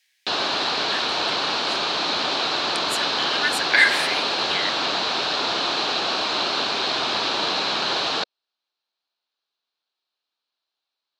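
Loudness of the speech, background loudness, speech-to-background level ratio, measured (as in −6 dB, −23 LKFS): −23.5 LKFS, −22.0 LKFS, −1.5 dB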